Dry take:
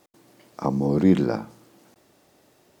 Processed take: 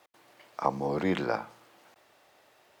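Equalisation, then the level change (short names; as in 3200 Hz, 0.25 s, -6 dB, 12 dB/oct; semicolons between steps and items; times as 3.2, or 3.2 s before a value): three-band isolator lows -19 dB, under 540 Hz, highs -16 dB, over 3400 Hz; bell 87 Hz +6.5 dB 1.9 oct; high shelf 3900 Hz +8.5 dB; +2.0 dB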